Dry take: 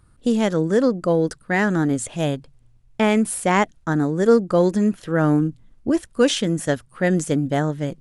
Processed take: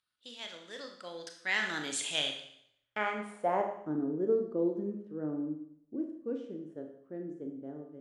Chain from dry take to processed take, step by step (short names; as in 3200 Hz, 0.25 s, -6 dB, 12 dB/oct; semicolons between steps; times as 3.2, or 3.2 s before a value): Doppler pass-by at 1.97, 11 m/s, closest 3.1 m; band-pass sweep 3500 Hz -> 350 Hz, 2.45–3.88; Schroeder reverb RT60 0.69 s, combs from 26 ms, DRR 3.5 dB; gain +8 dB